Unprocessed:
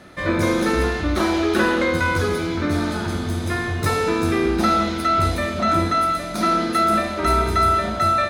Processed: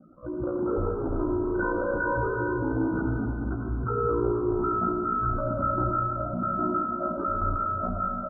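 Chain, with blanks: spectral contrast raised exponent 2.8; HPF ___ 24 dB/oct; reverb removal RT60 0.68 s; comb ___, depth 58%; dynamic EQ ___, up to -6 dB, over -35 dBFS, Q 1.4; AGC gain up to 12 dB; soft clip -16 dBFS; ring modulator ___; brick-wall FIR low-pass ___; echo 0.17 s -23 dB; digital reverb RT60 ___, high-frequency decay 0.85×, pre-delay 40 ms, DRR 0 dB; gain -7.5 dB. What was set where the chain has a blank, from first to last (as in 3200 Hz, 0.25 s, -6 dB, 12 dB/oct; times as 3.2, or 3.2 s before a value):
47 Hz, 4 ms, 200 Hz, 29 Hz, 1600 Hz, 3.1 s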